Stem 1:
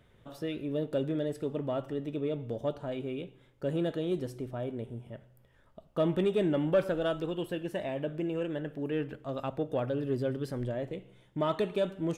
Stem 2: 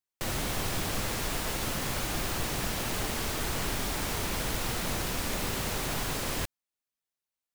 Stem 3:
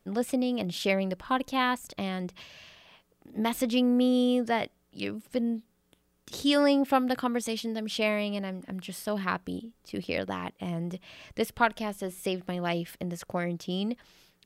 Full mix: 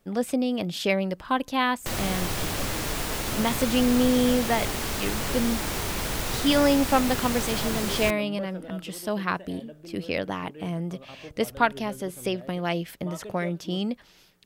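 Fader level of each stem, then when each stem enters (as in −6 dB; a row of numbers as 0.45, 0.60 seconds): −11.0, +2.5, +2.5 decibels; 1.65, 1.65, 0.00 seconds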